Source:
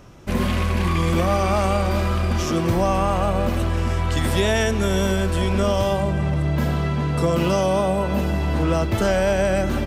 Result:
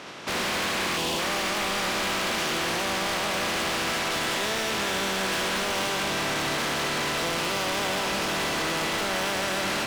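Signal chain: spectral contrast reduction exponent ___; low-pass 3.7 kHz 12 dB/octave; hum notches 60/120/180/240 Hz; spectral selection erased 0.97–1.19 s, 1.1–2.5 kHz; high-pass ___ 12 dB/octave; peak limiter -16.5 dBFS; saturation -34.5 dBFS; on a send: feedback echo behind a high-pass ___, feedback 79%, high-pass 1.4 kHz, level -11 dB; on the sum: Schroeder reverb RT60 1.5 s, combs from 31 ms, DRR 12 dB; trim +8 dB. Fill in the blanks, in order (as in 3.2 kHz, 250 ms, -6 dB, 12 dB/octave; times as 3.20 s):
0.31, 170 Hz, 76 ms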